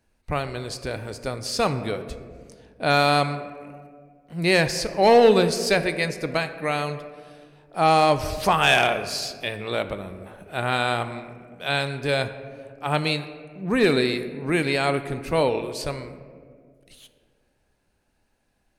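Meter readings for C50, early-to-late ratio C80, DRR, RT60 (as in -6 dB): 11.5 dB, 13.0 dB, 10.0 dB, 2.0 s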